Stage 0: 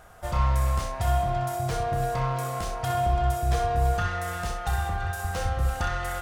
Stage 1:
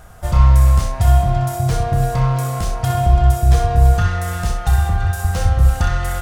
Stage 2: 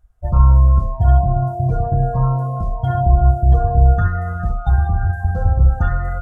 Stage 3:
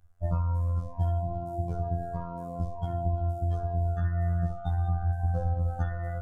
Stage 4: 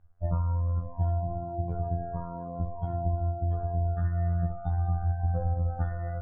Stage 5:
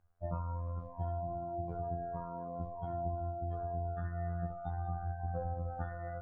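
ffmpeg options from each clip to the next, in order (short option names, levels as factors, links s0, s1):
-af "bass=f=250:g=9,treble=f=4000:g=4,volume=1.68"
-af "afftdn=nr=31:nf=-22"
-filter_complex "[0:a]acrossover=split=550|1700[s0][s1][s2];[s0]acompressor=threshold=0.0708:ratio=4[s3];[s1]acompressor=threshold=0.0126:ratio=4[s4];[s2]acompressor=threshold=0.00447:ratio=4[s5];[s3][s4][s5]amix=inputs=3:normalize=0,afftfilt=real='hypot(re,im)*cos(PI*b)':imag='0':win_size=2048:overlap=0.75"
-af "lowpass=1500"
-af "lowshelf=f=150:g=-12,volume=0.75"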